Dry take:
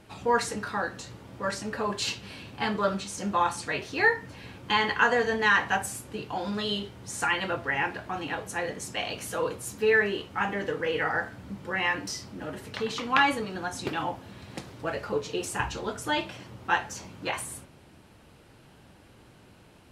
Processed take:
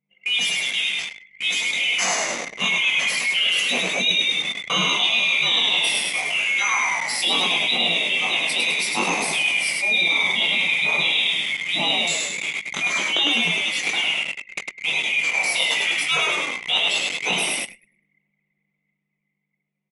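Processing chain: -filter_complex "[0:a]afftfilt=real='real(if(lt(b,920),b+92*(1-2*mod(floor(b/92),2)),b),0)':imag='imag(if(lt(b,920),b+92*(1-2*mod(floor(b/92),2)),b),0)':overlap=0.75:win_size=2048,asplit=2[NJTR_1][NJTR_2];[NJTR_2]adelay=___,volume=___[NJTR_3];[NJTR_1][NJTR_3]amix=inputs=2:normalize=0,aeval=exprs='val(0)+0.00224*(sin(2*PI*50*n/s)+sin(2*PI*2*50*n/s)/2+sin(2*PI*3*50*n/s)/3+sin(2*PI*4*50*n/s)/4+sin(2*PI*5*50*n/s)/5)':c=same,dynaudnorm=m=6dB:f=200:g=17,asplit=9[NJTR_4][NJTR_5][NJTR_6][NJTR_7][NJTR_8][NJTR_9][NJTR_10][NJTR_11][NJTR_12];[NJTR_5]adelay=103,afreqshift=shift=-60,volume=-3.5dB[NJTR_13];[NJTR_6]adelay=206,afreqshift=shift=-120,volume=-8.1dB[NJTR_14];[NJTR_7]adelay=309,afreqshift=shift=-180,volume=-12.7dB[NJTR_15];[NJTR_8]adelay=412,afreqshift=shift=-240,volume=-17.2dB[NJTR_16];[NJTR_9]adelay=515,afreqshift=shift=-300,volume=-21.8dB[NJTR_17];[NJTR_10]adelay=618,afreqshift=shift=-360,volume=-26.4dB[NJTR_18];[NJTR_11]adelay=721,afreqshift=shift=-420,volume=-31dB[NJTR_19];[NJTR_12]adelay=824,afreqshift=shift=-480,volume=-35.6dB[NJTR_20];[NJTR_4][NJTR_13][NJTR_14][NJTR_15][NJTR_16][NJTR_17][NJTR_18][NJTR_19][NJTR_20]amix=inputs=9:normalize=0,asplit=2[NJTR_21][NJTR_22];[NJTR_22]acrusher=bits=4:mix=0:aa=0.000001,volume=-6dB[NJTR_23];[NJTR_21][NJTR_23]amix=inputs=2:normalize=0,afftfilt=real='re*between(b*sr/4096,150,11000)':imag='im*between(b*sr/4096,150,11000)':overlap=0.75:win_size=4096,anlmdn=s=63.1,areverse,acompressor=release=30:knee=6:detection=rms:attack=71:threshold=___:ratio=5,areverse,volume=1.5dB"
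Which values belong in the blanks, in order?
21, -4.5dB, -25dB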